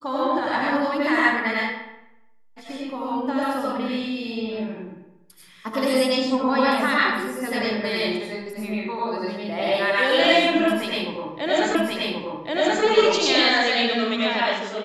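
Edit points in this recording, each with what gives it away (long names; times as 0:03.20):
0:11.75: the same again, the last 1.08 s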